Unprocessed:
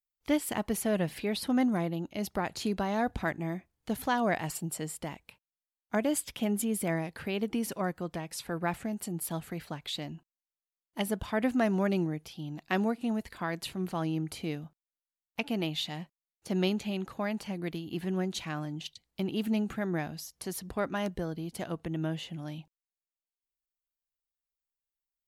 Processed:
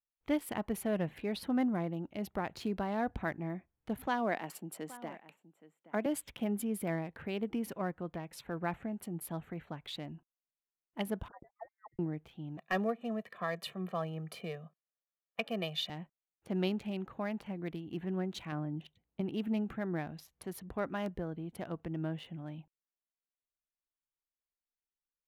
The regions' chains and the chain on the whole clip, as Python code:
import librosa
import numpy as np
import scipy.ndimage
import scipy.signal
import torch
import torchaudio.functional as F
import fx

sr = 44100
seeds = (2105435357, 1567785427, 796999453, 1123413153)

y = fx.chain(x, sr, fx.highpass(hz=200.0, slope=24),
    fx.echo_single(ms=822, db=-17.0), at=(4.07, 6.06))
y = fx.chain(y, sr, fx.envelope_sharpen(power=3.0),
    fx.cheby2_highpass(hz=340.0, order=4, stop_db=70),
    fx.freq_invert(carrier_hz=2500), at=(11.28, 11.99))
y = fx.chain(y, sr, fx.highpass(hz=170.0, slope=24),
    fx.comb(ms=1.7, depth=0.97),
    fx.overload_stage(gain_db=19.0), at=(12.57, 15.9))
y = fx.chain(y, sr, fx.highpass(hz=270.0, slope=6),
    fx.tilt_eq(slope=-3.5), at=(18.52, 19.21))
y = fx.wiener(y, sr, points=9)
y = fx.peak_eq(y, sr, hz=7500.0, db=-7.0, octaves=1.3)
y = y * librosa.db_to_amplitude(-4.0)